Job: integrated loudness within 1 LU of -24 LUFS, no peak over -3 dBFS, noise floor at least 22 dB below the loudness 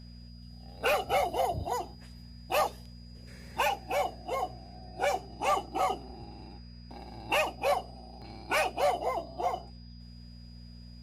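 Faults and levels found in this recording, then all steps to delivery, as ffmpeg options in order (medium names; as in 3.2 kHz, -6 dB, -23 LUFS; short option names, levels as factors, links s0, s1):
hum 60 Hz; highest harmonic 240 Hz; hum level -46 dBFS; steady tone 4.9 kHz; tone level -57 dBFS; loudness -31.0 LUFS; peak level -18.0 dBFS; loudness target -24.0 LUFS
-> -af "bandreject=f=60:t=h:w=4,bandreject=f=120:t=h:w=4,bandreject=f=180:t=h:w=4,bandreject=f=240:t=h:w=4"
-af "bandreject=f=4900:w=30"
-af "volume=2.24"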